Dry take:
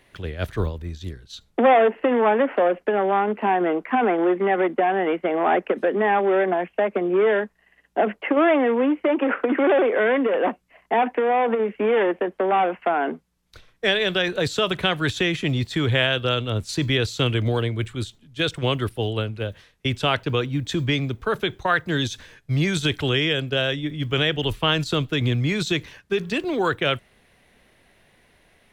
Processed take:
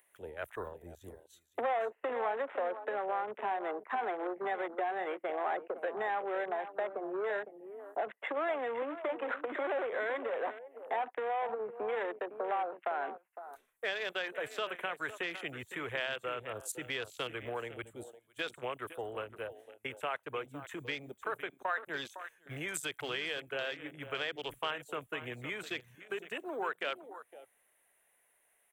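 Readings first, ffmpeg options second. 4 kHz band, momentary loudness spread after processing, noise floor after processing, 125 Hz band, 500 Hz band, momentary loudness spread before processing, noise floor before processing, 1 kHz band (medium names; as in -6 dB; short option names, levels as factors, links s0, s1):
-17.5 dB, 10 LU, -73 dBFS, -28.5 dB, -15.5 dB, 9 LU, -62 dBFS, -13.0 dB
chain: -filter_complex "[0:a]aexciter=amount=11.9:drive=8.7:freq=7200,acompressor=mode=upward:threshold=0.01:ratio=2.5,acrossover=split=460 3000:gain=0.0794 1 0.224[s0][s1][s2];[s0][s1][s2]amix=inputs=3:normalize=0,acompressor=threshold=0.00794:ratio=2,asplit=2[s3][s4];[s4]aecho=0:1:508:0.266[s5];[s3][s5]amix=inputs=2:normalize=0,afwtdn=0.00708"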